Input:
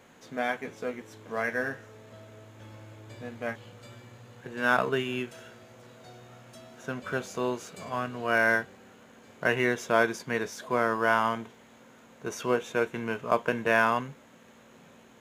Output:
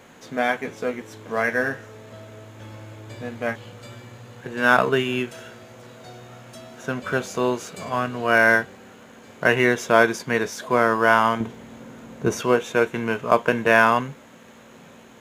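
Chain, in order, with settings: 11.4–12.41 low shelf 420 Hz +11 dB; gain +7.5 dB

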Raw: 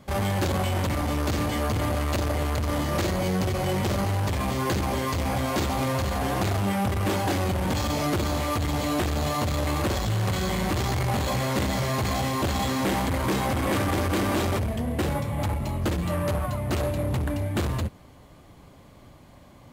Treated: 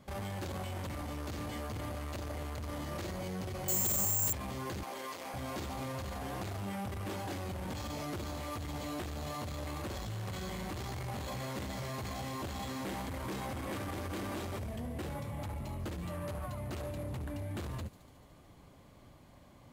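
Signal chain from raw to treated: 4.83–5.34 HPF 400 Hz 12 dB/oct; limiter -25.5 dBFS, peak gain reduction 8.5 dB; thin delay 73 ms, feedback 79%, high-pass 4700 Hz, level -13 dB; 3.68–4.33 careless resampling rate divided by 6×, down none, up zero stuff; gain -7.5 dB

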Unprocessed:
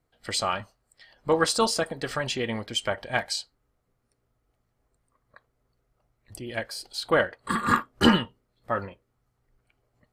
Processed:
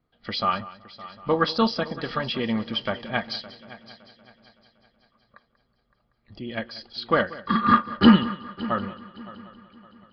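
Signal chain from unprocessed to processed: small resonant body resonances 210/1200/3300 Hz, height 10 dB, ringing for 45 ms; on a send: multi-head echo 0.188 s, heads first and third, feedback 50%, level -18 dB; on the sum: downsampling 11025 Hz; gain -1 dB

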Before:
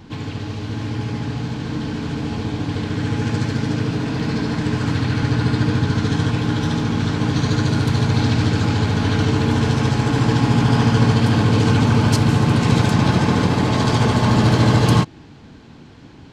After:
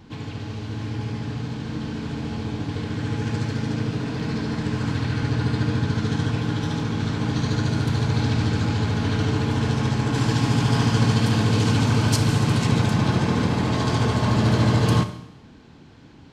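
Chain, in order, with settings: 10.14–12.67 high shelf 3800 Hz +7.5 dB; Schroeder reverb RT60 0.79 s, combs from 25 ms, DRR 9.5 dB; gain -5.5 dB

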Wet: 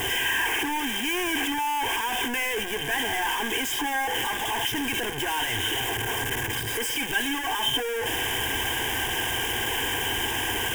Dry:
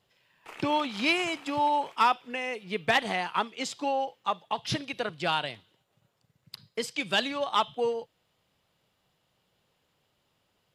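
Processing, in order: infinite clipping; fixed phaser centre 870 Hz, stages 8; small resonant body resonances 1600/3100 Hz, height 15 dB, ringing for 35 ms; gain +6 dB

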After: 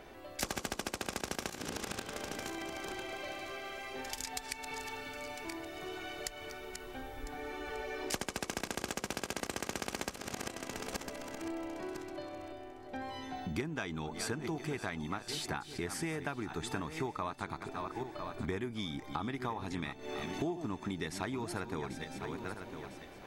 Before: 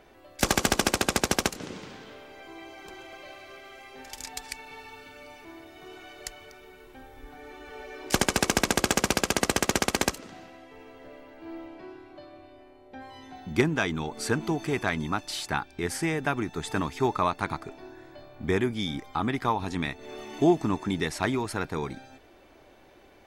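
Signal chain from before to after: regenerating reverse delay 0.501 s, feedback 42%, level -12 dB; compressor 5:1, threshold -39 dBFS, peak gain reduction 20.5 dB; gain +3 dB

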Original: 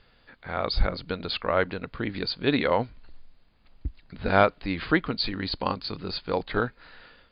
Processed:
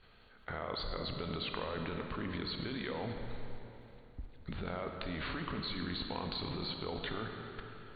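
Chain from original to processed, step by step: negative-ratio compressor -27 dBFS, ratio -1; varispeed -8%; level quantiser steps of 22 dB; digital reverb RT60 3.3 s, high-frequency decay 0.7×, pre-delay 10 ms, DRR 3.5 dB; gain +4 dB

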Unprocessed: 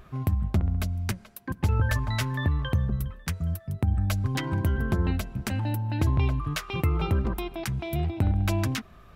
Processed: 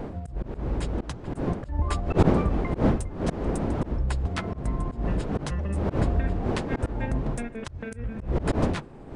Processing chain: delay-line pitch shifter -7 st; wind noise 360 Hz -24 dBFS; auto swell 0.148 s

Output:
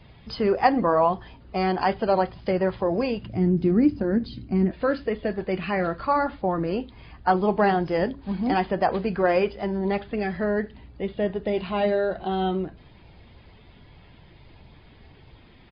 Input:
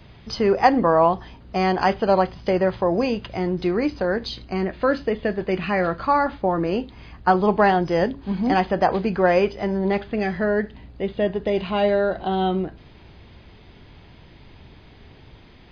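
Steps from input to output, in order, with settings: bin magnitudes rounded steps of 15 dB; downsampling 11025 Hz; 3.23–4.71 graphic EQ 125/250/500/1000/2000/4000 Hz +7/+11/-5/-7/-4/-9 dB; gain -3 dB

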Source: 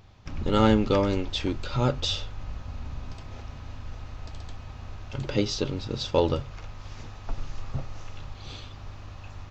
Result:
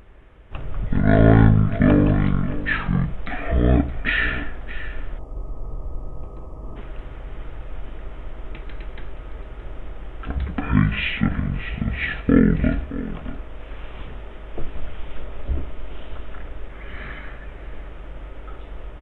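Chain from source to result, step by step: speed mistake 15 ips tape played at 7.5 ips; echo 0.621 s -15 dB; spectral gain 5.18–6.76, 1300–4500 Hz -19 dB; gain +6.5 dB

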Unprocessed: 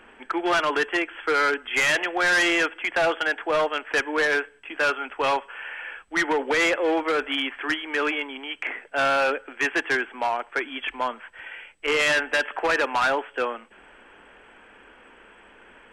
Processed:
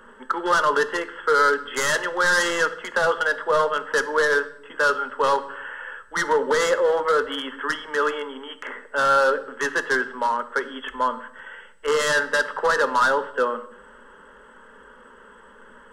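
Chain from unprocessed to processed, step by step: fixed phaser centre 480 Hz, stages 8; on a send: reverb RT60 0.80 s, pre-delay 3 ms, DRR 11.5 dB; on the sum: gain +5.5 dB

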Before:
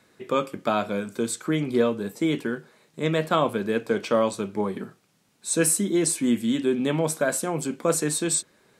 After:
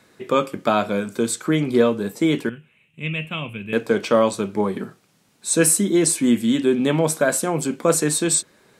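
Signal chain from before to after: 2.49–3.73 EQ curve 120 Hz 0 dB, 360 Hz -17 dB, 730 Hz -19 dB, 1700 Hz -14 dB, 2700 Hz +9 dB, 4500 Hz -29 dB, 8600 Hz -16 dB; gain +5 dB

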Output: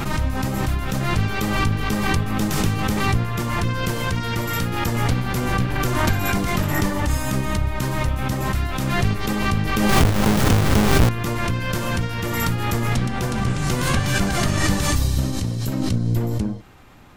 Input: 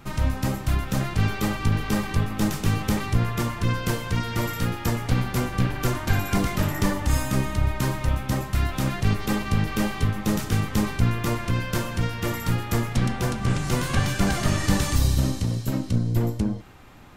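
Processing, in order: 9.89–11.09 half-waves squared off; backwards sustainer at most 28 dB/s

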